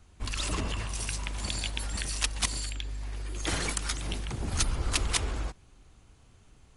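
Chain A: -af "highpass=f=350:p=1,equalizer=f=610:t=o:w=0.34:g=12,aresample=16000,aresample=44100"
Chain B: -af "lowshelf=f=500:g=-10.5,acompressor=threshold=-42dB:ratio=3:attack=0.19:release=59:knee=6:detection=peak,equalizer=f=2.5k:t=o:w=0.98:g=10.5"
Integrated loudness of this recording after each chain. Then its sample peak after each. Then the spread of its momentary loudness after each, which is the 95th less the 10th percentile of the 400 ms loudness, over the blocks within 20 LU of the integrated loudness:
-34.5, -40.5 LUFS; -14.0, -24.0 dBFS; 11, 7 LU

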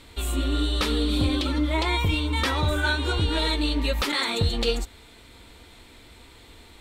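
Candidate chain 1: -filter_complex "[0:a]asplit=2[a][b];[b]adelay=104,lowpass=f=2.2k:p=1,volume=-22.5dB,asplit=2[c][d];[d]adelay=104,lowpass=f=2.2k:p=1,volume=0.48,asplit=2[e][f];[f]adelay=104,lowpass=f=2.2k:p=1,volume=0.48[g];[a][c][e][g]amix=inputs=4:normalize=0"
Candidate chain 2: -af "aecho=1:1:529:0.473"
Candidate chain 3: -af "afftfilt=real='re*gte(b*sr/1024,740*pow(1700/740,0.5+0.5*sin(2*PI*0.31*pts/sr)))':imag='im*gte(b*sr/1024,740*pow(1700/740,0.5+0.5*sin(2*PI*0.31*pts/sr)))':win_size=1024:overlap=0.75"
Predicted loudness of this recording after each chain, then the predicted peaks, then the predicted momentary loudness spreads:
-24.5, -24.0, -28.5 LUFS; -11.0, -9.5, -14.5 dBFS; 3, 8, 7 LU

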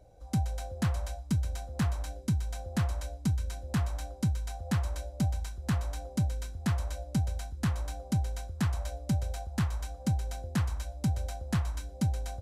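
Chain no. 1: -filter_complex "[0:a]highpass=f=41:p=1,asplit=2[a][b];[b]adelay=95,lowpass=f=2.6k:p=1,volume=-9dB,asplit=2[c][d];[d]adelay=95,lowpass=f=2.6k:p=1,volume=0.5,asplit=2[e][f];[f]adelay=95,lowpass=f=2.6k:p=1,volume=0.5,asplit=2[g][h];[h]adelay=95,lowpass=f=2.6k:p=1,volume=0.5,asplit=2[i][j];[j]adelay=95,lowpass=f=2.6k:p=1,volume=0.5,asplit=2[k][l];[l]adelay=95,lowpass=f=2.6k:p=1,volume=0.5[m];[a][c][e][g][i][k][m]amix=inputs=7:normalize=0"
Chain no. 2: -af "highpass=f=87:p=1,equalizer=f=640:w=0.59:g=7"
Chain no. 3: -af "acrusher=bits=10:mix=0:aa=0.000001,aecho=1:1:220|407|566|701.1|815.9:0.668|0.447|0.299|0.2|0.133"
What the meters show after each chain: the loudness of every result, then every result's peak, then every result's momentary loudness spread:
-33.5, -33.5, -31.0 LUFS; -19.5, -17.0, -18.0 dBFS; 3, 5, 2 LU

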